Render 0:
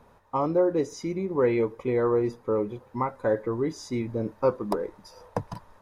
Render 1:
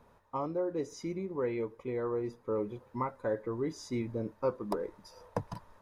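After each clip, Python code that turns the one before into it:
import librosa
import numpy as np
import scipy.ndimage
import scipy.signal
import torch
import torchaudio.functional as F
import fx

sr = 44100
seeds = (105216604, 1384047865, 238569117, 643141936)

y = fx.rider(x, sr, range_db=4, speed_s=0.5)
y = fx.notch(y, sr, hz=780.0, q=18.0)
y = y * librosa.db_to_amplitude(-8.0)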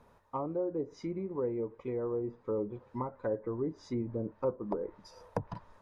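y = fx.env_lowpass_down(x, sr, base_hz=770.0, full_db=-30.0)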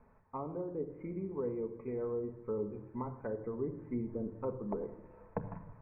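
y = scipy.signal.sosfilt(scipy.signal.butter(16, 2500.0, 'lowpass', fs=sr, output='sos'), x)
y = fx.low_shelf(y, sr, hz=120.0, db=6.0)
y = fx.room_shoebox(y, sr, seeds[0], volume_m3=3300.0, walls='furnished', distance_m=1.5)
y = y * librosa.db_to_amplitude(-5.0)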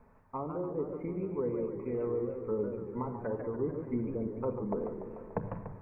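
y = fx.echo_warbled(x, sr, ms=147, feedback_pct=67, rate_hz=2.8, cents=203, wet_db=-8)
y = y * librosa.db_to_amplitude(3.0)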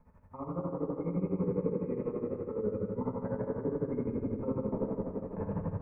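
y = fx.low_shelf(x, sr, hz=220.0, db=8.0)
y = fx.rev_fdn(y, sr, rt60_s=3.3, lf_ratio=1.0, hf_ratio=0.55, size_ms=33.0, drr_db=-7.0)
y = y * (1.0 - 0.7 / 2.0 + 0.7 / 2.0 * np.cos(2.0 * np.pi * 12.0 * (np.arange(len(y)) / sr)))
y = y * librosa.db_to_amplitude(-7.0)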